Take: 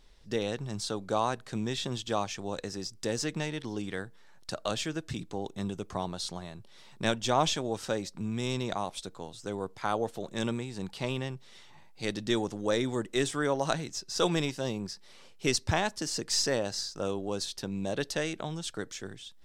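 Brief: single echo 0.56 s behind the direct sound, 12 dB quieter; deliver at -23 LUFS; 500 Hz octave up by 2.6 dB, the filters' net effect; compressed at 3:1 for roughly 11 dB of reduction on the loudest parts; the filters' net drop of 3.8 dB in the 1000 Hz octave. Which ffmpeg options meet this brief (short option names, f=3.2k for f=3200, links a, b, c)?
-af "equalizer=f=500:t=o:g=5,equalizer=f=1k:t=o:g=-7.5,acompressor=threshold=-37dB:ratio=3,aecho=1:1:560:0.251,volume=16.5dB"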